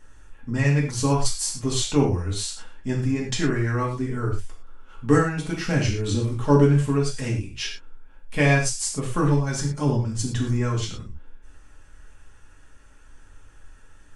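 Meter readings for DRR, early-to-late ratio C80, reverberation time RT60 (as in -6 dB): -3.5 dB, 9.5 dB, not exponential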